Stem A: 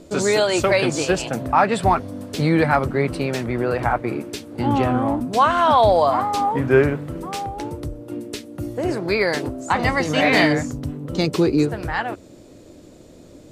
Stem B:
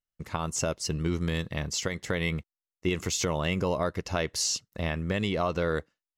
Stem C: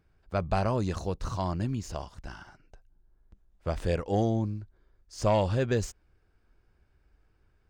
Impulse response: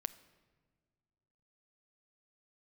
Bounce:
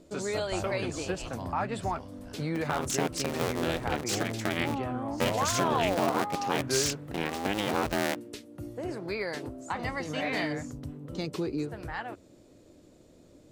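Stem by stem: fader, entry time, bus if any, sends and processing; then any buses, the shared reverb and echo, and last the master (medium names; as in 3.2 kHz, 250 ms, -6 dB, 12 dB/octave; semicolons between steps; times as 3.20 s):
-11.5 dB, 0.00 s, no send, compression 1.5:1, threshold -21 dBFS, peak gain reduction 4.5 dB
-1.0 dB, 2.35 s, no send, cycle switcher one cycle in 2, inverted; high-pass 130 Hz 24 dB/octave
-9.5 dB, 0.00 s, no send, none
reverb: none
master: none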